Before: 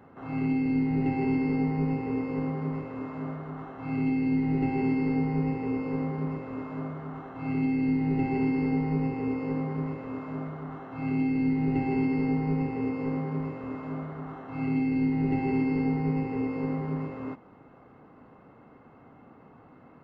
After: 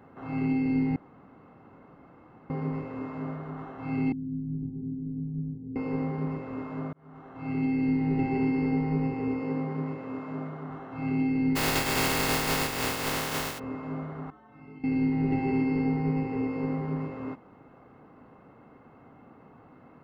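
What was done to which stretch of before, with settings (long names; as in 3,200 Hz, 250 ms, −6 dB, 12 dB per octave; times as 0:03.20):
0:00.96–0:02.50: fill with room tone
0:04.12–0:05.76: transistor ladder low-pass 270 Hz, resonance 25%
0:06.93–0:07.89: fade in equal-power
0:09.42–0:10.70: high-pass filter 120 Hz
0:11.55–0:13.58: compressing power law on the bin magnitudes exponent 0.24
0:14.30–0:14.84: stiff-string resonator 65 Hz, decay 0.71 s, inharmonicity 0.03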